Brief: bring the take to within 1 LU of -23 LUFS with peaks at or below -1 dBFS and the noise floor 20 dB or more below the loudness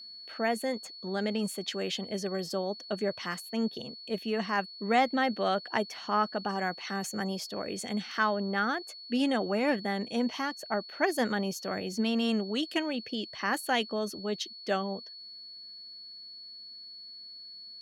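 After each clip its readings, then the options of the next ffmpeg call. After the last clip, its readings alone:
steady tone 4400 Hz; tone level -44 dBFS; loudness -31.5 LUFS; peak -13.5 dBFS; loudness target -23.0 LUFS
-> -af "bandreject=f=4.4k:w=30"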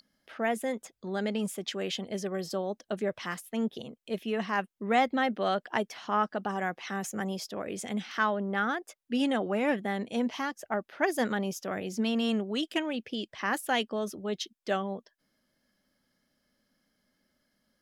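steady tone none; loudness -31.5 LUFS; peak -13.0 dBFS; loudness target -23.0 LUFS
-> -af "volume=8.5dB"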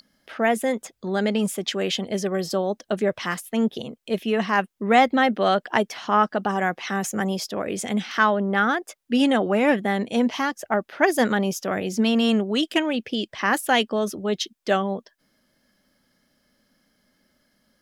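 loudness -23.0 LUFS; peak -4.5 dBFS; noise floor -71 dBFS

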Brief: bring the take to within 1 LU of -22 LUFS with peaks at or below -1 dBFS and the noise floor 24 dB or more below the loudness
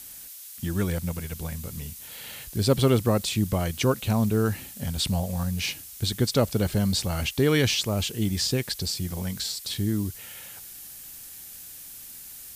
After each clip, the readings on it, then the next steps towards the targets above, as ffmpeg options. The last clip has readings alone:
noise floor -43 dBFS; noise floor target -50 dBFS; loudness -26.0 LUFS; peak -7.5 dBFS; loudness target -22.0 LUFS
-> -af "afftdn=nr=7:nf=-43"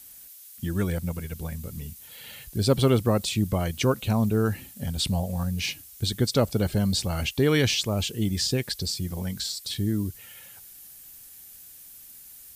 noise floor -47 dBFS; noise floor target -51 dBFS
-> -af "afftdn=nr=6:nf=-47"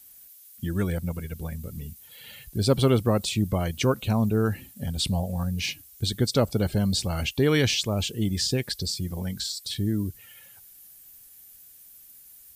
noise floor -51 dBFS; loudness -26.5 LUFS; peak -7.5 dBFS; loudness target -22.0 LUFS
-> -af "volume=4.5dB"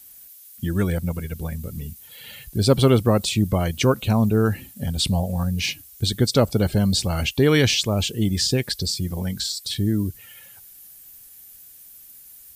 loudness -22.0 LUFS; peak -3.0 dBFS; noise floor -46 dBFS

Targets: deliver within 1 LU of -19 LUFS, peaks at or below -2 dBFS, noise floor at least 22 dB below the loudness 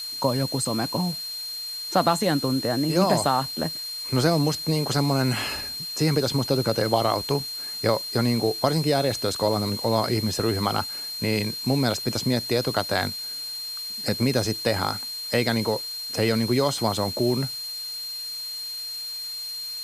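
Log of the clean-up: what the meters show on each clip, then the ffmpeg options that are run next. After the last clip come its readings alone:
steady tone 4200 Hz; tone level -31 dBFS; noise floor -34 dBFS; noise floor target -47 dBFS; loudness -24.5 LUFS; peak -6.0 dBFS; loudness target -19.0 LUFS
-> -af "bandreject=f=4.2k:w=30"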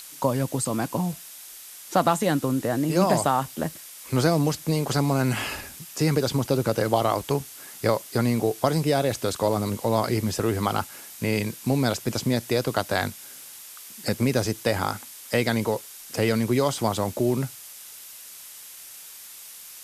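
steady tone none; noise floor -43 dBFS; noise floor target -47 dBFS
-> -af "afftdn=nr=6:nf=-43"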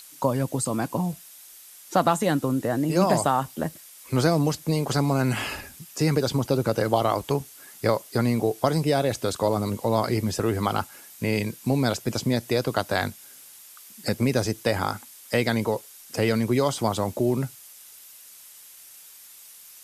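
noise floor -48 dBFS; loudness -25.0 LUFS; peak -6.0 dBFS; loudness target -19.0 LUFS
-> -af "volume=6dB,alimiter=limit=-2dB:level=0:latency=1"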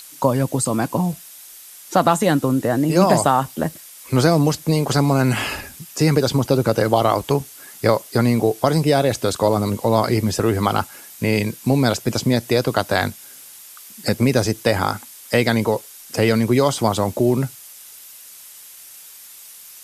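loudness -19.0 LUFS; peak -2.0 dBFS; noise floor -42 dBFS

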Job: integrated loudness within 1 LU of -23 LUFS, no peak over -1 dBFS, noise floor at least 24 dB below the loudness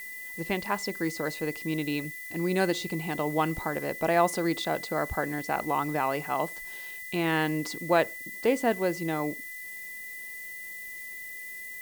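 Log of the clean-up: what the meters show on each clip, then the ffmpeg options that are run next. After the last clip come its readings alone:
steady tone 2000 Hz; tone level -39 dBFS; noise floor -41 dBFS; noise floor target -54 dBFS; loudness -30.0 LUFS; peak -10.0 dBFS; loudness target -23.0 LUFS
-> -af "bandreject=f=2k:w=30"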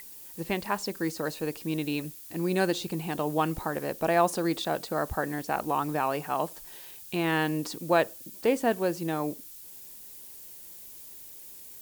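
steady tone none; noise floor -46 dBFS; noise floor target -54 dBFS
-> -af "afftdn=nr=8:nf=-46"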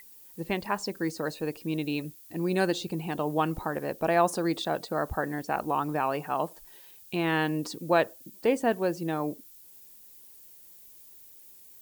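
noise floor -52 dBFS; noise floor target -54 dBFS
-> -af "afftdn=nr=6:nf=-52"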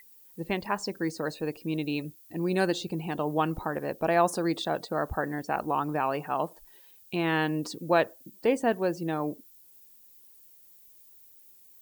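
noise floor -56 dBFS; loudness -29.5 LUFS; peak -10.5 dBFS; loudness target -23.0 LUFS
-> -af "volume=6.5dB"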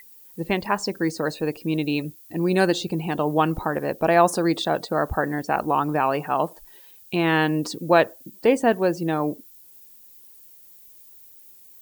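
loudness -23.0 LUFS; peak -4.0 dBFS; noise floor -49 dBFS

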